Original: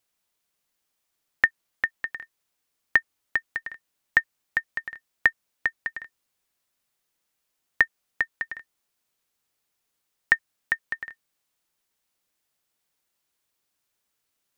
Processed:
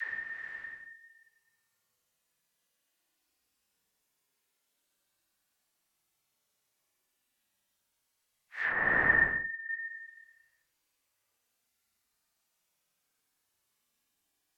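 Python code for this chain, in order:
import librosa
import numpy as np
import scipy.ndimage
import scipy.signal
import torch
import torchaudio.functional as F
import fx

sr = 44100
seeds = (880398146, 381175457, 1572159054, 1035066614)

y = fx.paulstretch(x, sr, seeds[0], factor=20.0, window_s=0.05, from_s=3.72)
y = fx.env_lowpass_down(y, sr, base_hz=970.0, full_db=-24.0)
y = fx.dispersion(y, sr, late='lows', ms=109.0, hz=360.0)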